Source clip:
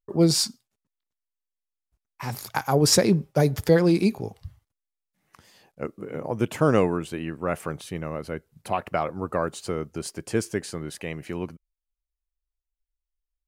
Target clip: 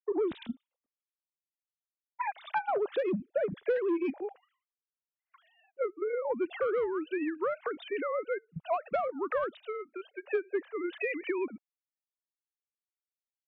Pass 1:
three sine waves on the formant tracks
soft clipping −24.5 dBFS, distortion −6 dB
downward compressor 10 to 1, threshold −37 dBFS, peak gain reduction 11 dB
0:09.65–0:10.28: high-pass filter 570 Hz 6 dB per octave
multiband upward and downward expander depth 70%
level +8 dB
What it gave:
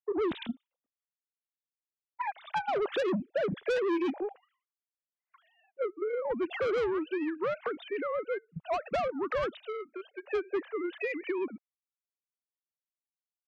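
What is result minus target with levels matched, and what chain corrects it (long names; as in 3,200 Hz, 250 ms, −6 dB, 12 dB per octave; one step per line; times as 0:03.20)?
soft clipping: distortion +8 dB
three sine waves on the formant tracks
soft clipping −15 dBFS, distortion −14 dB
downward compressor 10 to 1, threshold −37 dBFS, peak gain reduction 19 dB
0:09.65–0:10.28: high-pass filter 570 Hz 6 dB per octave
multiband upward and downward expander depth 70%
level +8 dB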